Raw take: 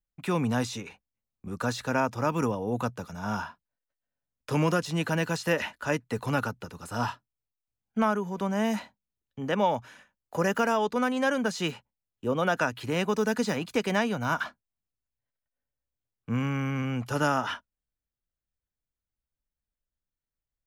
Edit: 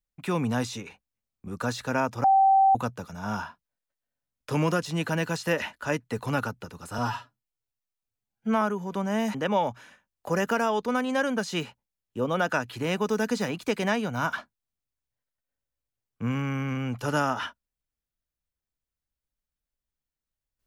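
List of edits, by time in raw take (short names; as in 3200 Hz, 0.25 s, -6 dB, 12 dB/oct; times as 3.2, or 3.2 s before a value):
2.24–2.75 bleep 776 Hz -15.5 dBFS
6.98–8.07 stretch 1.5×
8.8–9.42 cut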